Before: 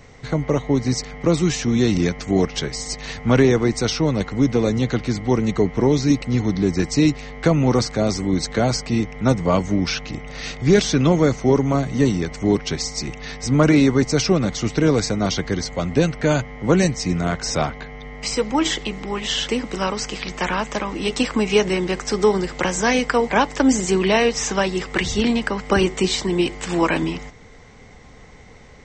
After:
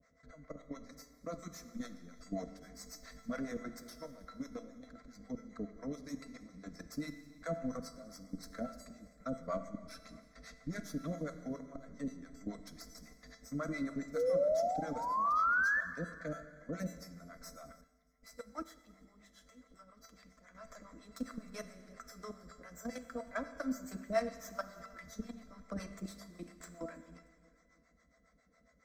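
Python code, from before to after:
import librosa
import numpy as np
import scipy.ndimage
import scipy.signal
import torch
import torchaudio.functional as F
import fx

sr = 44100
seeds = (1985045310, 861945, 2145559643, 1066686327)

y = fx.tracing_dist(x, sr, depth_ms=0.051)
y = scipy.signal.sosfilt(scipy.signal.butter(4, 44.0, 'highpass', fs=sr, output='sos'), y)
y = fx.high_shelf(y, sr, hz=6300.0, db=-5.0)
y = fx.level_steps(y, sr, step_db=17)
y = fx.comb_fb(y, sr, f0_hz=670.0, decay_s=0.28, harmonics='all', damping=0.0, mix_pct=90)
y = fx.harmonic_tremolo(y, sr, hz=7.3, depth_pct=100, crossover_hz=520.0)
y = fx.spec_paint(y, sr, seeds[0], shape='rise', start_s=14.15, length_s=1.66, low_hz=460.0, high_hz=1800.0, level_db=-35.0)
y = fx.fixed_phaser(y, sr, hz=570.0, stages=8)
y = fx.echo_feedback(y, sr, ms=315, feedback_pct=52, wet_db=-23.5)
y = fx.rev_schroeder(y, sr, rt60_s=1.7, comb_ms=31, drr_db=10.5)
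y = fx.upward_expand(y, sr, threshold_db=-58.0, expansion=1.5, at=(17.81, 20.55))
y = y * librosa.db_to_amplitude(5.0)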